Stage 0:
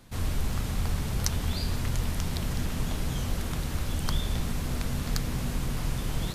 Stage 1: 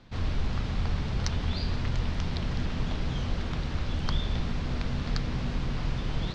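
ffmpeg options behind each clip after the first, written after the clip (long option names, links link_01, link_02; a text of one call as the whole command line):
ffmpeg -i in.wav -af "lowpass=frequency=4900:width=0.5412,lowpass=frequency=4900:width=1.3066" out.wav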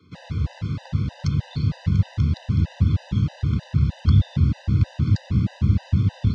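ffmpeg -i in.wav -af "asubboost=boost=4.5:cutoff=180,afreqshift=65,afftfilt=real='re*gt(sin(2*PI*3.2*pts/sr)*(1-2*mod(floor(b*sr/1024/510),2)),0)':imag='im*gt(sin(2*PI*3.2*pts/sr)*(1-2*mod(floor(b*sr/1024/510),2)),0)':win_size=1024:overlap=0.75" out.wav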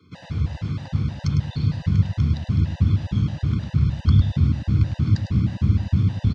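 ffmpeg -i in.wav -af "aecho=1:1:104:0.355" out.wav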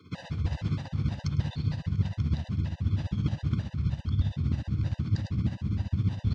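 ffmpeg -i in.wav -af "areverse,acompressor=threshold=-27dB:ratio=5,areverse,tremolo=f=15:d=0.59,volume=4dB" out.wav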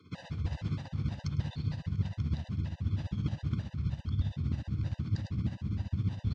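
ffmpeg -i in.wav -af "aresample=22050,aresample=44100,volume=-4.5dB" out.wav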